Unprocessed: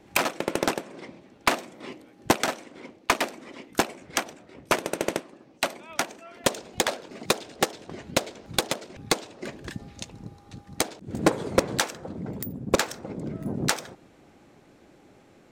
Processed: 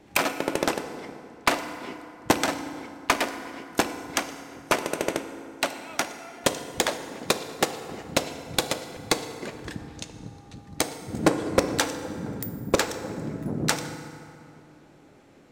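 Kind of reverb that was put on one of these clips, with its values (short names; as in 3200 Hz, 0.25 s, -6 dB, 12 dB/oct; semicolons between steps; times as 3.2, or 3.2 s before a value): FDN reverb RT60 2.7 s, high-frequency decay 0.55×, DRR 8.5 dB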